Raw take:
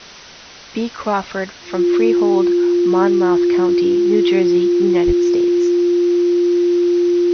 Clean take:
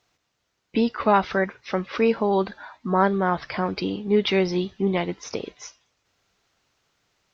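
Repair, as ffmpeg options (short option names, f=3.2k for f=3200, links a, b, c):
-filter_complex "[0:a]bandreject=f=350:w=30,asplit=3[a][b][c];[a]afade=t=out:st=5.06:d=0.02[d];[b]highpass=f=140:w=0.5412,highpass=f=140:w=1.3066,afade=t=in:st=5.06:d=0.02,afade=t=out:st=5.18:d=0.02[e];[c]afade=t=in:st=5.18:d=0.02[f];[d][e][f]amix=inputs=3:normalize=0,afwtdn=0.02"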